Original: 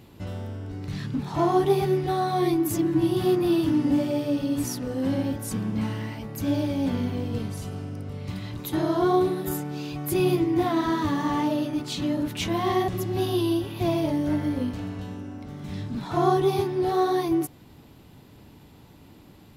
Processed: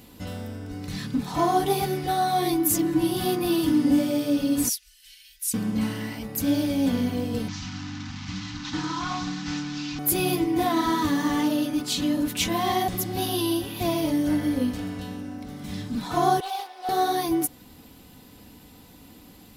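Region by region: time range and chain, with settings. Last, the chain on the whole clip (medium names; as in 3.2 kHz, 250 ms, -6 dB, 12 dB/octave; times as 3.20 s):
4.69–5.54 s: inverse Chebyshev band-stop 120–810 Hz, stop band 60 dB + upward expansion, over -52 dBFS
7.48–9.99 s: one-bit delta coder 32 kbps, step -34.5 dBFS + Chebyshev band-stop 300–800 Hz, order 4 + loudspeaker Doppler distortion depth 0.14 ms
16.40–16.89 s: ladder high-pass 630 Hz, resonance 55% + peaking EQ 3.4 kHz +6 dB 0.98 oct + loudspeaker Doppler distortion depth 0.13 ms
whole clip: treble shelf 4.7 kHz +11 dB; comb 4 ms, depth 48%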